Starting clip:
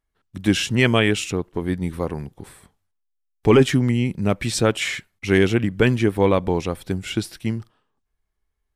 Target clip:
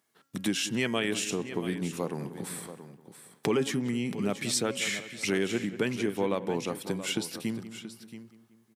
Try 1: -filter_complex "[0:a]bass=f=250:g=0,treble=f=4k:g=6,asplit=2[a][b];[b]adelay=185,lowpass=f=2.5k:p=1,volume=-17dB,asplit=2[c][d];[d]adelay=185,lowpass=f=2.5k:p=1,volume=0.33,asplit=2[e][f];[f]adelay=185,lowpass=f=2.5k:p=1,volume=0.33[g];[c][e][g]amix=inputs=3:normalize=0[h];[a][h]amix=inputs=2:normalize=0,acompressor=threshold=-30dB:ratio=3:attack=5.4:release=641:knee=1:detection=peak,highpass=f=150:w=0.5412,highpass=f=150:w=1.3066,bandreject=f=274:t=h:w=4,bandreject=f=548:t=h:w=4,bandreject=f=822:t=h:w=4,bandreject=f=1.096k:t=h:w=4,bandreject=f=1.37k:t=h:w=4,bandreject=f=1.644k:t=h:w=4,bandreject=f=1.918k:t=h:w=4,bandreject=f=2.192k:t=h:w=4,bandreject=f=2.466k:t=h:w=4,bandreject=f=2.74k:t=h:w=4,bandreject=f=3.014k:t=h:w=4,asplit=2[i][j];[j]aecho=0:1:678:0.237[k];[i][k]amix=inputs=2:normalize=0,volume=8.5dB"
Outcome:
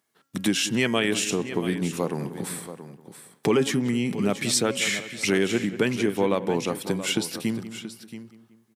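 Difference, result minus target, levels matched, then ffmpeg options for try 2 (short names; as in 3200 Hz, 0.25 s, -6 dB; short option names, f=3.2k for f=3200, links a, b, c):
compressor: peak gain reduction -5.5 dB
-filter_complex "[0:a]bass=f=250:g=0,treble=f=4k:g=6,asplit=2[a][b];[b]adelay=185,lowpass=f=2.5k:p=1,volume=-17dB,asplit=2[c][d];[d]adelay=185,lowpass=f=2.5k:p=1,volume=0.33,asplit=2[e][f];[f]adelay=185,lowpass=f=2.5k:p=1,volume=0.33[g];[c][e][g]amix=inputs=3:normalize=0[h];[a][h]amix=inputs=2:normalize=0,acompressor=threshold=-38.5dB:ratio=3:attack=5.4:release=641:knee=1:detection=peak,highpass=f=150:w=0.5412,highpass=f=150:w=1.3066,bandreject=f=274:t=h:w=4,bandreject=f=548:t=h:w=4,bandreject=f=822:t=h:w=4,bandreject=f=1.096k:t=h:w=4,bandreject=f=1.37k:t=h:w=4,bandreject=f=1.644k:t=h:w=4,bandreject=f=1.918k:t=h:w=4,bandreject=f=2.192k:t=h:w=4,bandreject=f=2.466k:t=h:w=4,bandreject=f=2.74k:t=h:w=4,bandreject=f=3.014k:t=h:w=4,asplit=2[i][j];[j]aecho=0:1:678:0.237[k];[i][k]amix=inputs=2:normalize=0,volume=8.5dB"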